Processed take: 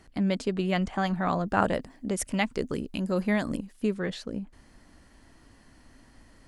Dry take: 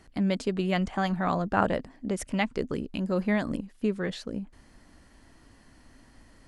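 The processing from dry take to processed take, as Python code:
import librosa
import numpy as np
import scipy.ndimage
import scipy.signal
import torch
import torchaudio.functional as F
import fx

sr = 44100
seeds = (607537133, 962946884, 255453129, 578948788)

y = fx.high_shelf(x, sr, hz=6800.0, db=10.5, at=(1.47, 3.94))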